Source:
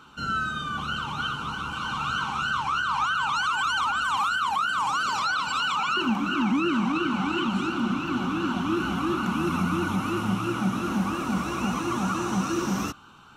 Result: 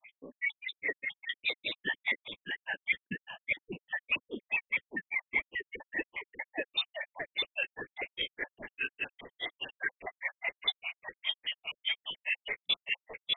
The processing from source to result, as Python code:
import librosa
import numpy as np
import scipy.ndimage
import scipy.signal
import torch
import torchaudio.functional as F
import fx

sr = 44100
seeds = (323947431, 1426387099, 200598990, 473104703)

y = fx.spec_dropout(x, sr, seeds[0], share_pct=68)
y = fx.freq_invert(y, sr, carrier_hz=3300)
y = y + 10.0 ** (-4.0 / 20.0) * np.pad(y, (int(606 * sr / 1000.0), 0))[:len(y)]
y = fx.rider(y, sr, range_db=4, speed_s=0.5)
y = fx.granulator(y, sr, seeds[1], grain_ms=120.0, per_s=4.9, spray_ms=18.0, spread_st=3)